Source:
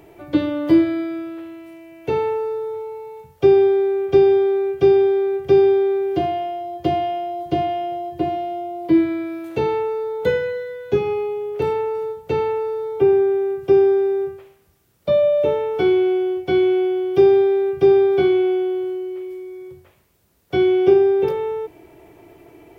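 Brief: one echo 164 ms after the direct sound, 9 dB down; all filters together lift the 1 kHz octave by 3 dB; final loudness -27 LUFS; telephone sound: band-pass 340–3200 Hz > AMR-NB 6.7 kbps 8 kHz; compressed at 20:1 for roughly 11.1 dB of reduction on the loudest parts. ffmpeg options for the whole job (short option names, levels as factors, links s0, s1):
-af "equalizer=f=1000:t=o:g=5,acompressor=threshold=0.112:ratio=20,highpass=340,lowpass=3200,aecho=1:1:164:0.355,volume=0.891" -ar 8000 -c:a libopencore_amrnb -b:a 6700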